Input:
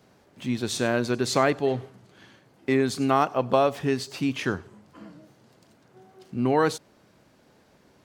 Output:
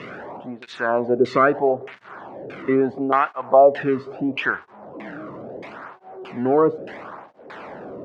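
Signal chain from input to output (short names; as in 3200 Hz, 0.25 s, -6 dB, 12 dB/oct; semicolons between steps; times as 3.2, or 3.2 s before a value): zero-crossing step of -32.5 dBFS; LFO low-pass saw down 1.6 Hz 440–2400 Hz; tape flanging out of phase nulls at 0.75 Hz, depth 1.3 ms; gain +3.5 dB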